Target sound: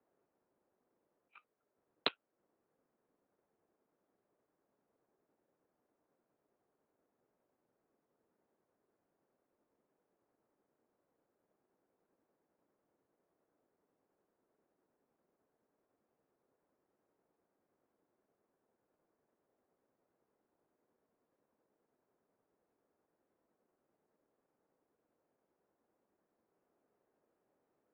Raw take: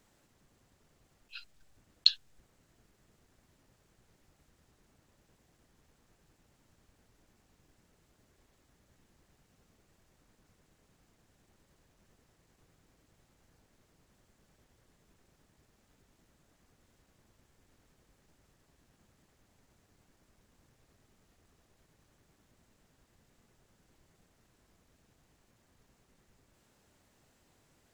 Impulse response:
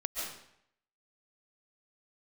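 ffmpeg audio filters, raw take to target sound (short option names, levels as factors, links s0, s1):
-af "adynamicsmooth=sensitivity=4:basefreq=740,aeval=exprs='0.531*(cos(1*acos(clip(val(0)/0.531,-1,1)))-cos(1*PI/2))+0.188*(cos(6*acos(clip(val(0)/0.531,-1,1)))-cos(6*PI/2))':c=same,highpass=f=530:t=q:w=0.5412,highpass=f=530:t=q:w=1.307,lowpass=f=3100:t=q:w=0.5176,lowpass=f=3100:t=q:w=0.7071,lowpass=f=3100:t=q:w=1.932,afreqshift=-180,volume=1.19"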